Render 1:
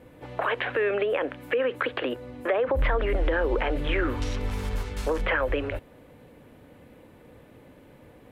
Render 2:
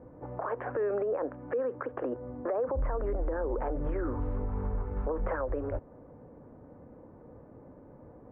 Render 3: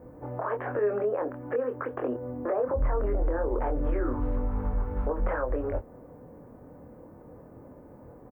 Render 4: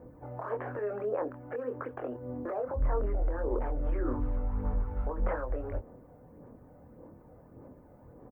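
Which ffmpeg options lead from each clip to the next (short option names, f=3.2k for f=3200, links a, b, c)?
-af "lowpass=f=1.2k:w=0.5412,lowpass=f=1.2k:w=1.3066,alimiter=limit=-23.5dB:level=0:latency=1:release=211"
-filter_complex "[0:a]aemphasis=mode=production:type=50fm,asplit=2[a][b];[b]adelay=24,volume=-4.5dB[c];[a][c]amix=inputs=2:normalize=0,volume=2dB"
-af "aphaser=in_gain=1:out_gain=1:delay=1.5:decay=0.38:speed=1.7:type=sinusoidal,volume=-6dB"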